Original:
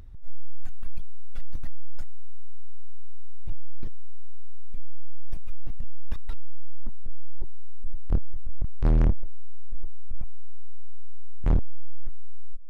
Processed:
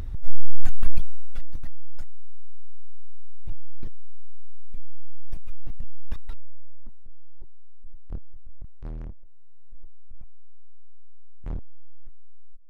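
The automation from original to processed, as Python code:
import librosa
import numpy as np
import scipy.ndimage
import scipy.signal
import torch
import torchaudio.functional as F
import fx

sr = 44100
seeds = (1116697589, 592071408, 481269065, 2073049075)

y = fx.gain(x, sr, db=fx.line((0.86, 12.0), (1.53, -0.5), (6.13, -0.5), (7.03, -11.0), (8.53, -11.0), (9.19, -18.5), (9.81, -11.0)))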